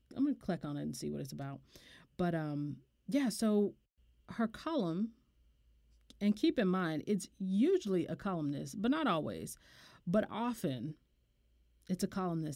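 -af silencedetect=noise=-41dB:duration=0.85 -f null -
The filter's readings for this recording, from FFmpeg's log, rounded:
silence_start: 5.06
silence_end: 6.10 | silence_duration: 1.04
silence_start: 10.91
silence_end: 11.90 | silence_duration: 0.98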